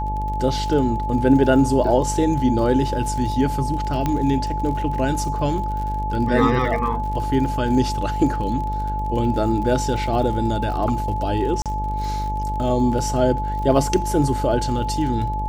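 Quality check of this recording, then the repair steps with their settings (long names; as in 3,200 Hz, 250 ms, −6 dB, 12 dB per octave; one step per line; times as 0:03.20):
mains buzz 50 Hz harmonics 19 −26 dBFS
surface crackle 56 per second −30 dBFS
whistle 860 Hz −25 dBFS
0:04.06: click −9 dBFS
0:11.62–0:11.66: drop-out 37 ms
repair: click removal
hum removal 50 Hz, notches 19
notch filter 860 Hz, Q 30
repair the gap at 0:11.62, 37 ms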